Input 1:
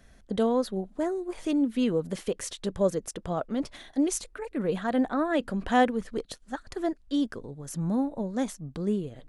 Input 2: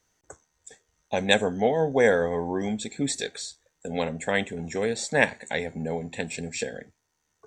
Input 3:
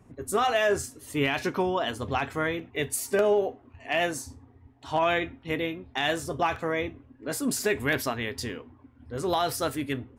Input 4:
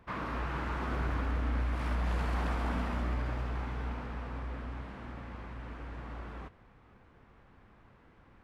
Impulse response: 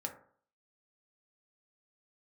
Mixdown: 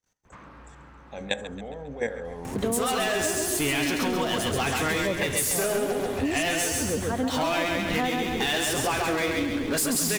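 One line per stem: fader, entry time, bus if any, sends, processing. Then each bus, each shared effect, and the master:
+1.5 dB, 2.25 s, no send, echo send -4 dB, dry
-5.5 dB, 0.00 s, send -3.5 dB, echo send -14.5 dB, level quantiser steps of 18 dB
-5.0 dB, 2.45 s, no send, echo send -3.5 dB, high shelf 2100 Hz +11.5 dB; power-law curve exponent 0.5
+0.5 dB, 0.25 s, send -7 dB, no echo send, compressor 2:1, threshold -53 dBFS, peak gain reduction 13.5 dB; auto duck -12 dB, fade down 1.05 s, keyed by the second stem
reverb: on, RT60 0.55 s, pre-delay 3 ms
echo: feedback echo 0.135 s, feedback 47%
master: compressor, threshold -23 dBFS, peak gain reduction 9.5 dB

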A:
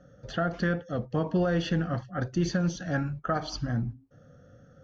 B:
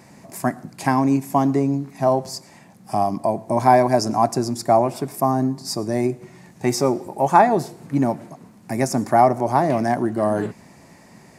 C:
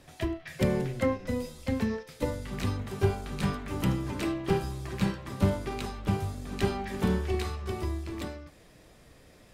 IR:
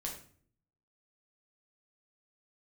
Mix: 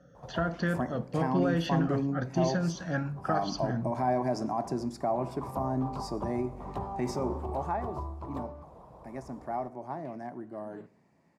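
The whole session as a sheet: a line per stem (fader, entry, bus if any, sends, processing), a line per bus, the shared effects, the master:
-3.5 dB, 0.00 s, no bus, send -12 dB, dry
7.52 s -9.5 dB -> 7.79 s -20.5 dB, 0.35 s, bus A, send -11.5 dB, LPF 1900 Hz 6 dB/oct
+3.0 dB, 0.15 s, bus A, send -19.5 dB, harmonic-percussive split percussive +8 dB; EQ curve 100 Hz 0 dB, 270 Hz -12 dB, 1000 Hz +8 dB, 1800 Hz -25 dB; compressor 1.5:1, threshold -47 dBFS, peak gain reduction 11.5 dB; auto duck -22 dB, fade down 1.75 s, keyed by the first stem
bus A: 0.0 dB, limiter -23.5 dBFS, peak gain reduction 11 dB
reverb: on, RT60 0.50 s, pre-delay 6 ms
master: HPF 56 Hz; bell 97 Hz -9.5 dB 0.35 oct

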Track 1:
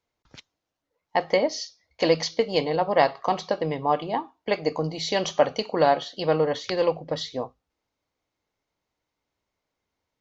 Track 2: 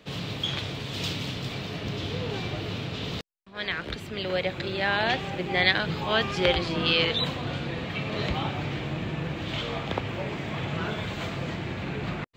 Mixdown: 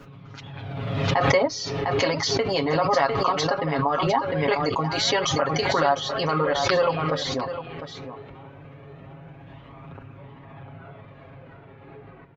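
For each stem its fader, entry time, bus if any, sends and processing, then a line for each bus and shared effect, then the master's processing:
-2.5 dB, 0.00 s, no send, echo send -11 dB, reverb removal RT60 0.58 s; bell 1300 Hz +13.5 dB 0.77 oct; limiter -10.5 dBFS, peak gain reduction 10 dB
-12.0 dB, 0.00 s, no send, echo send -6 dB, LPF 1500 Hz 12 dB/oct; flange 0.2 Hz, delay 0.7 ms, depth 2.2 ms, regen +37%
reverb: off
echo: echo 0.703 s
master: comb 7.3 ms, depth 93%; backwards sustainer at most 28 dB/s

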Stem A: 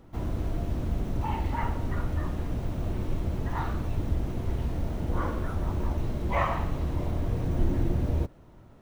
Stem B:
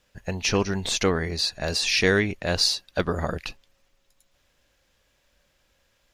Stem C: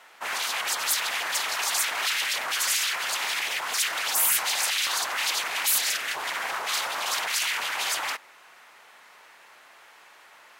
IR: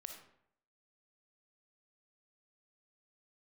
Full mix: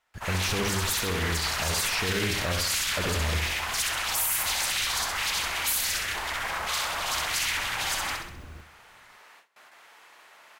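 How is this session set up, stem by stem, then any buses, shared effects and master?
-16.0 dB, 0.35 s, bus A, no send, echo send -12 dB, limiter -22 dBFS, peak gain reduction 8 dB
-1.5 dB, 0.00 s, bus A, no send, echo send -8 dB, de-esser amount 100%; bell 79 Hz +11 dB 0.44 oct
-2.5 dB, 0.00 s, no bus, no send, echo send -4.5 dB, dry
bus A: 0.0 dB, high shelf 3500 Hz +10 dB; limiter -18 dBFS, peak gain reduction 8.5 dB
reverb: off
echo: feedback echo 65 ms, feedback 46%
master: gate with hold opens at -43 dBFS; limiter -17.5 dBFS, peak gain reduction 7.5 dB

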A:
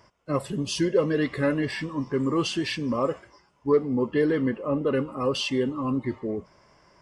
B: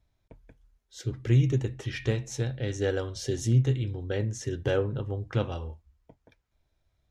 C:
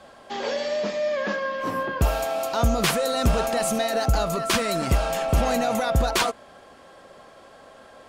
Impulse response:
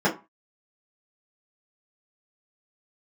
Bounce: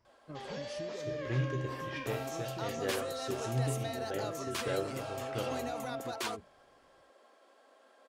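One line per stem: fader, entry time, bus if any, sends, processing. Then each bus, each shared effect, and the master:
-18.5 dB, 0.00 s, no send, low shelf 200 Hz +9 dB; compressor, threshold -24 dBFS, peak gain reduction 10 dB
+2.5 dB, 0.00 s, no send, tone controls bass -9 dB, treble -4 dB; resonator 64 Hz, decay 0.62 s, harmonics all, mix 80%
-14.5 dB, 0.05 s, no send, steep high-pass 250 Hz 36 dB/oct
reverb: off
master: dry

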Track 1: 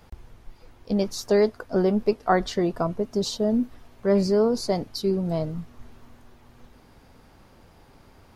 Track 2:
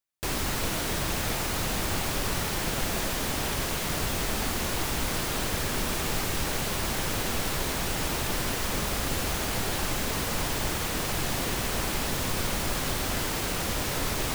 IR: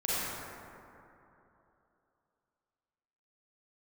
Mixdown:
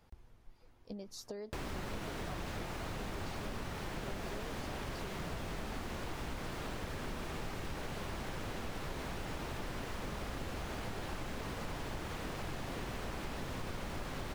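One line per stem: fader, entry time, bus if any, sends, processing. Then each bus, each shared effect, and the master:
-13.0 dB, 0.00 s, no send, compressor, threshold -24 dBFS, peak gain reduction 9.5 dB
+0.5 dB, 1.30 s, no send, LPF 2000 Hz 6 dB/oct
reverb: off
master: compressor 2.5:1, threshold -43 dBFS, peak gain reduction 12.5 dB

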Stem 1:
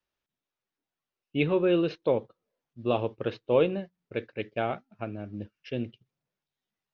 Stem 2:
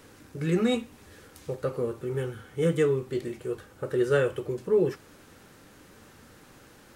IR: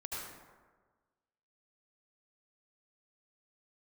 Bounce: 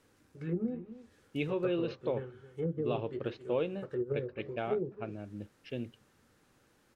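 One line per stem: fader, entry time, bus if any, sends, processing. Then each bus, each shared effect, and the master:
-5.5 dB, 0.00 s, no send, no echo send, compressor 1.5:1, threshold -28 dBFS, peak gain reduction 4 dB
-7.0 dB, 0.00 s, no send, echo send -14.5 dB, treble ducked by the level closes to 380 Hz, closed at -20 dBFS; upward expander 1.5:1, over -37 dBFS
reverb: off
echo: echo 0.268 s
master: dry

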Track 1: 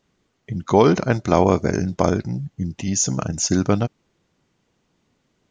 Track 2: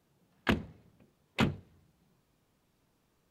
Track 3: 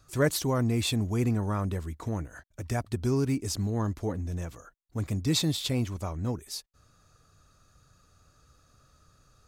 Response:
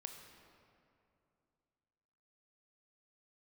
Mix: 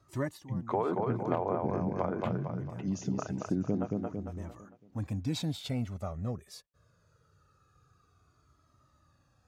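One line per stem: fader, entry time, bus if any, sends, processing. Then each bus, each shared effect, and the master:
-6.0 dB, 0.00 s, no send, echo send -4.5 dB, treble ducked by the level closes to 1500 Hz, closed at -13 dBFS; photocell phaser 1.6 Hz
-11.0 dB, 0.85 s, send -7.5 dB, no echo send, dry
+2.0 dB, 0.00 s, no send, no echo send, cascading flanger falling 0.23 Hz; auto duck -17 dB, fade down 0.30 s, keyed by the first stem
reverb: on, RT60 2.6 s, pre-delay 20 ms
echo: feedback echo 0.226 s, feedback 42%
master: HPF 95 Hz; high shelf 2900 Hz -11.5 dB; compressor 2.5:1, threshold -28 dBFS, peak gain reduction 7 dB

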